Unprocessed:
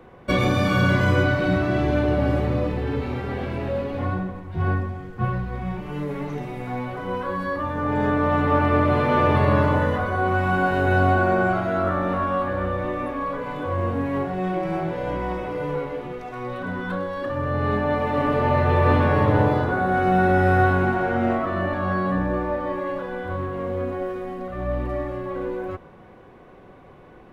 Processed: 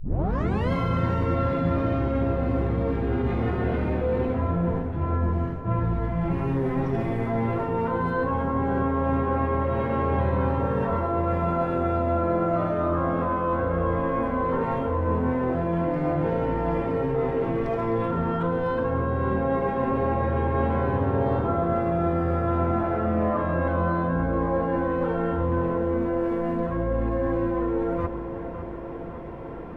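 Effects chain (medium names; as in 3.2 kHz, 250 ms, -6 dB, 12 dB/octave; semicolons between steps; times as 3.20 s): tape start-up on the opening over 0.66 s; wide varispeed 0.918×; reverse; compression 6:1, threshold -31 dBFS, peak gain reduction 16.5 dB; reverse; treble shelf 2.9 kHz -11.5 dB; on a send: filtered feedback delay 557 ms, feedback 67%, low-pass 2.3 kHz, level -10 dB; on the sum: upward compressor, threshold -57 dBFS; trim +9 dB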